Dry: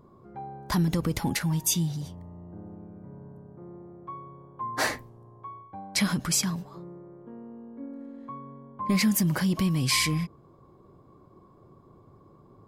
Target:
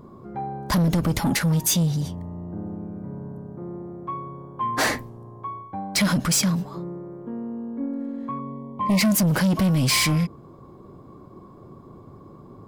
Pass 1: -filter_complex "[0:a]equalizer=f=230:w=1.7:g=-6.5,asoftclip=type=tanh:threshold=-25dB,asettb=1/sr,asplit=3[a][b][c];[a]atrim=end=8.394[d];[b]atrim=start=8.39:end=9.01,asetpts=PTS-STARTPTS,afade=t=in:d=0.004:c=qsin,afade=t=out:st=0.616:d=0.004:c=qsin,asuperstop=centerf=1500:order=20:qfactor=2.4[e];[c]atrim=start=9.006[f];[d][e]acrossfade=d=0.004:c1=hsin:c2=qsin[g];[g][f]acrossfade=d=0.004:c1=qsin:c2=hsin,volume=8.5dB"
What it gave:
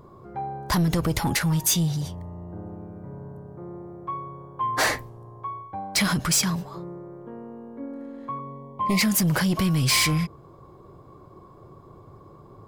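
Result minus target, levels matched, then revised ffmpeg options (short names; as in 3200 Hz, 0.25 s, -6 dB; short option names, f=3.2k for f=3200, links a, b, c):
250 Hz band -3.0 dB
-filter_complex "[0:a]equalizer=f=230:w=1.7:g=4,asoftclip=type=tanh:threshold=-25dB,asettb=1/sr,asplit=3[a][b][c];[a]atrim=end=8.394[d];[b]atrim=start=8.39:end=9.01,asetpts=PTS-STARTPTS,afade=t=in:d=0.004:c=qsin,afade=t=out:st=0.616:d=0.004:c=qsin,asuperstop=centerf=1500:order=20:qfactor=2.4[e];[c]atrim=start=9.006[f];[d][e]acrossfade=d=0.004:c1=hsin:c2=qsin[g];[g][f]acrossfade=d=0.004:c1=qsin:c2=hsin,volume=8.5dB"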